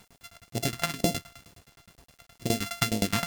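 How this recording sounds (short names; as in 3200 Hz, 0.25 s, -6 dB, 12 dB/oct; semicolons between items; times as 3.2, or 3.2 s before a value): a buzz of ramps at a fixed pitch in blocks of 64 samples; phasing stages 2, 2.1 Hz, lowest notch 350–1300 Hz; tremolo saw down 9.6 Hz, depth 95%; a quantiser's noise floor 10-bit, dither none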